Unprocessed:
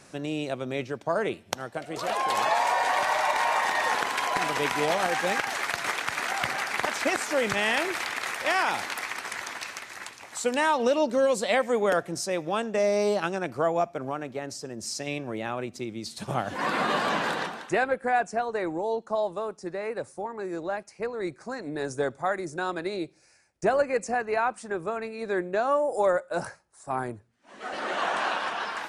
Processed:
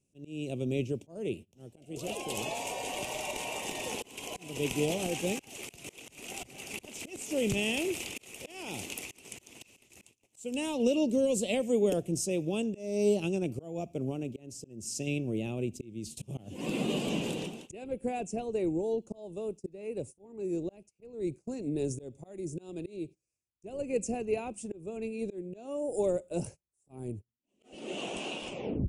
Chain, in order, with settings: tape stop on the ending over 0.42 s; gate -41 dBFS, range -25 dB; bass shelf 150 Hz +9 dB; slow attack 331 ms; FFT filter 400 Hz 0 dB, 1.2 kHz -24 dB, 1.7 kHz -28 dB, 2.7 kHz 0 dB, 4.2 kHz -12 dB, 7 kHz +1 dB

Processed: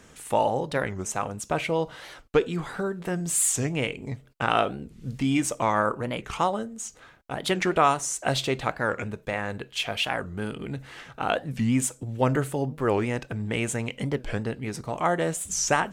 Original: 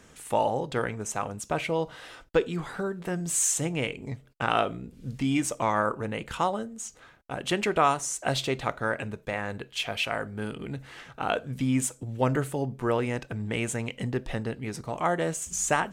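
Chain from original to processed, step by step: warped record 45 rpm, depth 250 cents; trim +2 dB

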